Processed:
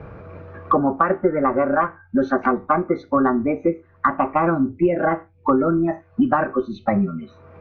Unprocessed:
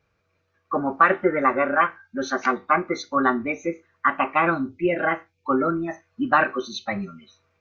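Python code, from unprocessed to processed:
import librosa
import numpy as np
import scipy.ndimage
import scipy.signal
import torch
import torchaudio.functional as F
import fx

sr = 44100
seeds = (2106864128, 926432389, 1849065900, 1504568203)

y = scipy.signal.sosfilt(scipy.signal.butter(2, 1000.0, 'lowpass', fs=sr, output='sos'), x)
y = fx.low_shelf(y, sr, hz=110.0, db=9.5)
y = fx.band_squash(y, sr, depth_pct=100)
y = y * librosa.db_to_amplitude(4.0)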